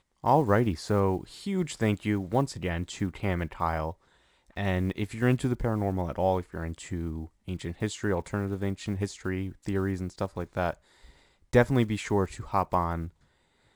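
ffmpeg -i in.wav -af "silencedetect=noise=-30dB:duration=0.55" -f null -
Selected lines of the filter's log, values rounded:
silence_start: 3.91
silence_end: 4.57 | silence_duration: 0.67
silence_start: 10.71
silence_end: 11.53 | silence_duration: 0.82
silence_start: 13.06
silence_end: 13.75 | silence_duration: 0.69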